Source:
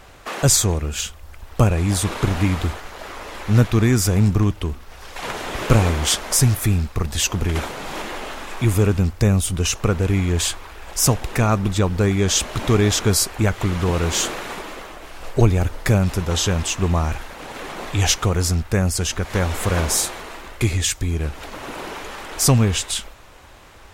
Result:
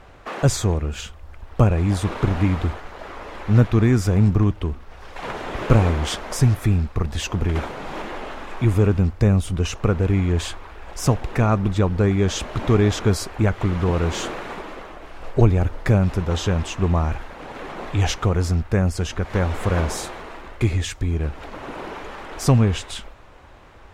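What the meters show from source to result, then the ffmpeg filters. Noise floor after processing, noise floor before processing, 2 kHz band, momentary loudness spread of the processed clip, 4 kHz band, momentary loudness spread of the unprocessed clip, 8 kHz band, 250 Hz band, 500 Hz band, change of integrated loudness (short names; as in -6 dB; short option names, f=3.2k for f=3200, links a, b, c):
-43 dBFS, -42 dBFS, -3.5 dB, 17 LU, -7.5 dB, 15 LU, -12.5 dB, 0.0 dB, -0.5 dB, -1.5 dB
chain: -af "lowpass=f=1.7k:p=1"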